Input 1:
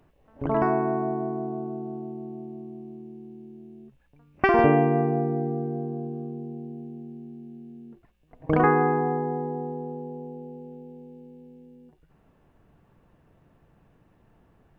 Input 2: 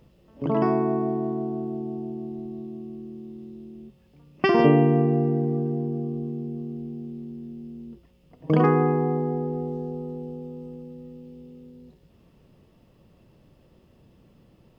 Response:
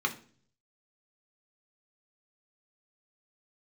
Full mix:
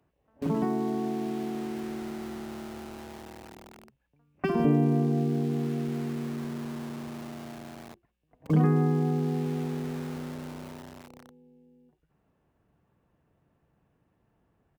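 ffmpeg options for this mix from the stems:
-filter_complex "[0:a]volume=-9.5dB[link_01];[1:a]lowshelf=frequency=120:width_type=q:width=3:gain=-11.5,aeval=exprs='val(0)*gte(abs(val(0)),0.0237)':channel_layout=same,volume=-1,adelay=4.5,volume=-5dB[link_02];[link_01][link_02]amix=inputs=2:normalize=0,highpass=44,acrossover=split=300[link_03][link_04];[link_04]acompressor=threshold=-34dB:ratio=2.5[link_05];[link_03][link_05]amix=inputs=2:normalize=0"

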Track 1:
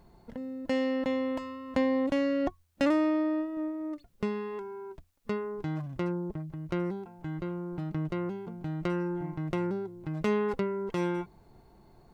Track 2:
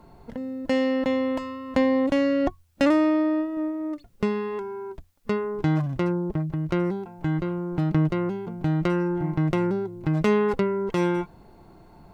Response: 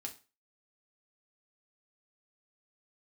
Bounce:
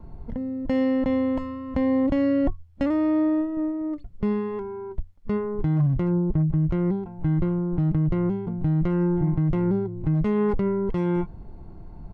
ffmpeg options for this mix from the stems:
-filter_complex "[0:a]volume=-14.5dB[link_01];[1:a]aemphasis=mode=reproduction:type=riaa,adelay=0.9,volume=-3dB[link_02];[link_01][link_02]amix=inputs=2:normalize=0,alimiter=limit=-15.5dB:level=0:latency=1:release=21"

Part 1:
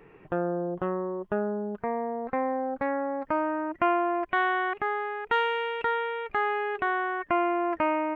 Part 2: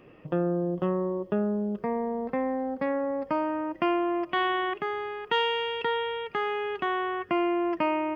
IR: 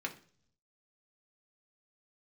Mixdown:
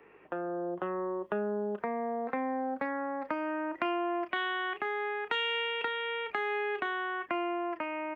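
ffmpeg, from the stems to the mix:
-filter_complex "[0:a]highshelf=frequency=2600:gain=9.5,dynaudnorm=framelen=130:gausssize=13:maxgain=8.5dB,aeval=exprs='val(0)+0.00251*(sin(2*PI*50*n/s)+sin(2*PI*2*50*n/s)/2+sin(2*PI*3*50*n/s)/3+sin(2*PI*4*50*n/s)/4+sin(2*PI*5*50*n/s)/5)':channel_layout=same,volume=-3.5dB[link_01];[1:a]highpass=frequency=980:poles=1,dynaudnorm=framelen=400:gausssize=7:maxgain=10dB,adelay=30,volume=-10.5dB[link_02];[link_01][link_02]amix=inputs=2:normalize=0,highpass=57,acrossover=split=260 2900:gain=0.0891 1 0.2[link_03][link_04][link_05];[link_03][link_04][link_05]amix=inputs=3:normalize=0,acrossover=split=290|3000[link_06][link_07][link_08];[link_07]acompressor=threshold=-34dB:ratio=6[link_09];[link_06][link_09][link_08]amix=inputs=3:normalize=0"

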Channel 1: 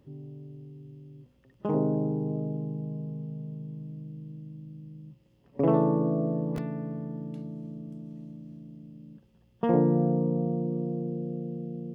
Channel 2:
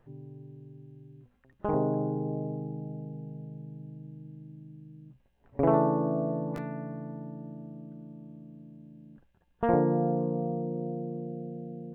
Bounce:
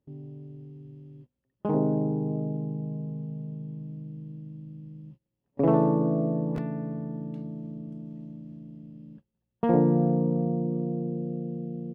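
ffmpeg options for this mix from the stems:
ffmpeg -i stem1.wav -i stem2.wav -filter_complex "[0:a]lowpass=frequency=2600:poles=1,volume=1.5dB[link_01];[1:a]aeval=exprs='clip(val(0),-1,0.0631)':channel_layout=same,adelay=0.6,volume=-17dB[link_02];[link_01][link_02]amix=inputs=2:normalize=0,agate=range=-21dB:threshold=-48dB:ratio=16:detection=peak" out.wav

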